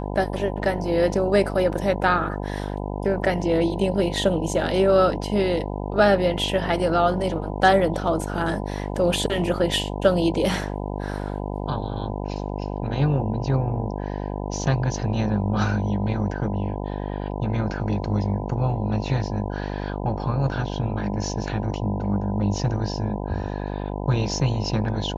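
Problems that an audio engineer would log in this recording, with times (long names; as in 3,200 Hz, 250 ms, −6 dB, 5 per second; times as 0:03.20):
mains buzz 50 Hz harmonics 20 −29 dBFS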